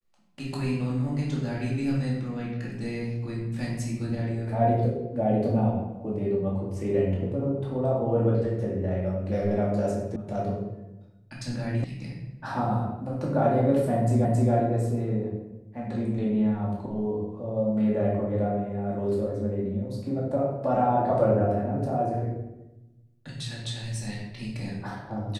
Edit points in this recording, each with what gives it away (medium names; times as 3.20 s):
10.16 s: sound stops dead
11.84 s: sound stops dead
14.25 s: repeat of the last 0.27 s